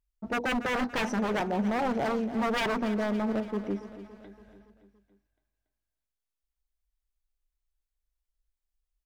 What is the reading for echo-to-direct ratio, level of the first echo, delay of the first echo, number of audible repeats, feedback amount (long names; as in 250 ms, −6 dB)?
−12.0 dB, −13.5 dB, 283 ms, 5, 54%